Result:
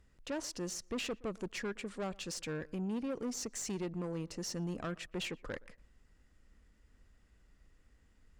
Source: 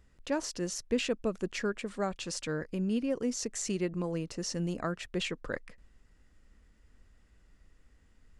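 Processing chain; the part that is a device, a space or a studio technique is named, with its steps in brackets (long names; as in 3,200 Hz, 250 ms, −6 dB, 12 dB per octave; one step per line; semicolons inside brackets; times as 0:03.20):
rockabilly slapback (tube saturation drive 31 dB, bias 0.3; tape delay 119 ms, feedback 22%, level −21.5 dB, low-pass 1,700 Hz)
level −2 dB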